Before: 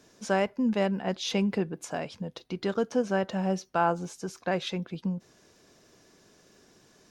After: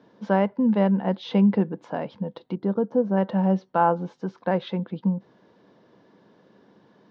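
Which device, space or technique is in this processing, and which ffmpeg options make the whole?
guitar cabinet: -filter_complex "[0:a]asplit=3[s0][s1][s2];[s0]afade=t=out:st=2.54:d=0.02[s3];[s1]equalizer=f=2900:w=0.49:g=-14.5,afade=t=in:st=2.54:d=0.02,afade=t=out:st=3.16:d=0.02[s4];[s2]afade=t=in:st=3.16:d=0.02[s5];[s3][s4][s5]amix=inputs=3:normalize=0,highpass=110,equalizer=f=130:t=q:w=4:g=5,equalizer=f=200:t=q:w=4:g=9,equalizer=f=290:t=q:w=4:g=5,equalizer=f=510:t=q:w=4:g=7,equalizer=f=920:t=q:w=4:g=9,equalizer=f=2500:t=q:w=4:g=-8,lowpass=f=3500:w=0.5412,lowpass=f=3500:w=1.3066"

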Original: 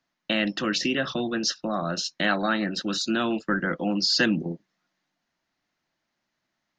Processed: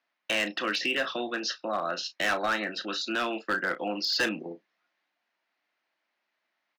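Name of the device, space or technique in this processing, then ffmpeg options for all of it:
megaphone: -filter_complex "[0:a]highpass=450,lowpass=3800,equalizer=f=2400:t=o:w=0.49:g=4,asoftclip=type=hard:threshold=0.0891,asplit=2[s0][s1];[s1]adelay=33,volume=0.251[s2];[s0][s2]amix=inputs=2:normalize=0"

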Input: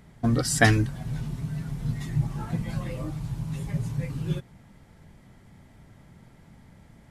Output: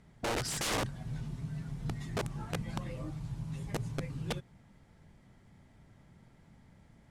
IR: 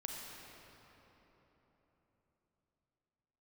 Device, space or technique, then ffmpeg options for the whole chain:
overflowing digital effects unit: -af "aeval=exprs='(mod(10*val(0)+1,2)-1)/10':c=same,lowpass=10000,volume=0.422"

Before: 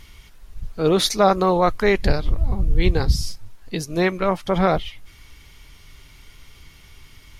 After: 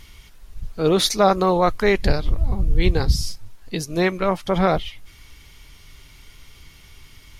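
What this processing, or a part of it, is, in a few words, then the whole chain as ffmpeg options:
exciter from parts: -filter_complex "[0:a]asplit=2[s0][s1];[s1]highpass=2100,asoftclip=type=tanh:threshold=0.0891,volume=0.211[s2];[s0][s2]amix=inputs=2:normalize=0"

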